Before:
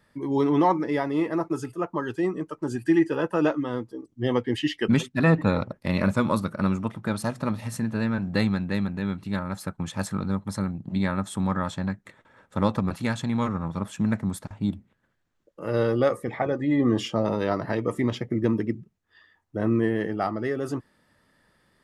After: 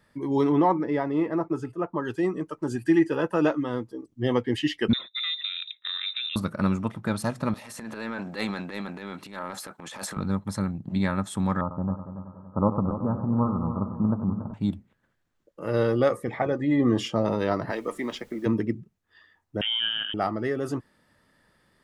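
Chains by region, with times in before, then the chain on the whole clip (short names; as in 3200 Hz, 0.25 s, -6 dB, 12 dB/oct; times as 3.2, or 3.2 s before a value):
0.52–2.05 Bessel low-pass 10000 Hz + high shelf 2900 Hz -11.5 dB
4.93–6.36 compressor 5:1, threshold -26 dBFS + fixed phaser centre 1700 Hz, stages 4 + inverted band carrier 3800 Hz
7.54–10.17 HPF 380 Hz + transient shaper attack -11 dB, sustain +8 dB
11.61–14.54 steep low-pass 1300 Hz 72 dB/oct + multi-head echo 94 ms, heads first and third, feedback 56%, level -11.5 dB
17.7–18.45 HPF 180 Hz 24 dB/oct + low shelf 390 Hz -9.5 dB + added noise pink -60 dBFS
19.61–20.14 HPF 410 Hz 6 dB/oct + inverted band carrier 3400 Hz
whole clip: dry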